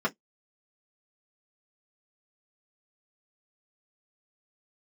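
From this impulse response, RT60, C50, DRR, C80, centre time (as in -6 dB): 0.10 s, 29.5 dB, -5.5 dB, 48.0 dB, 7 ms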